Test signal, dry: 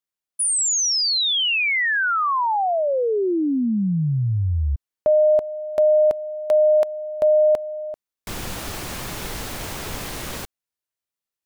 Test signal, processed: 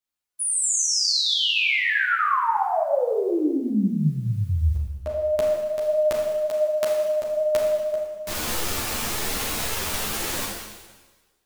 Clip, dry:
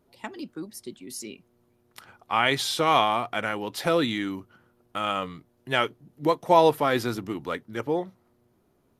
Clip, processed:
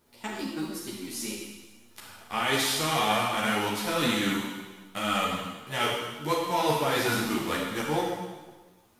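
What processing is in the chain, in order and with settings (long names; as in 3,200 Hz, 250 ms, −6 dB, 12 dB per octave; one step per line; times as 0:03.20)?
spectral envelope flattened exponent 0.6
reversed playback
downward compressor 12 to 1, threshold −24 dBFS
reversed playback
four-comb reverb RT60 1.3 s, combs from 26 ms, DRR −1 dB
string-ensemble chorus
level +3 dB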